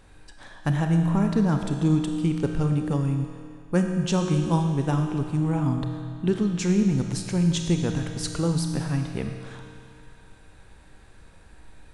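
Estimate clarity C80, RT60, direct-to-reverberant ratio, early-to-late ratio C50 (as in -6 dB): 5.5 dB, 2.4 s, 3.5 dB, 4.5 dB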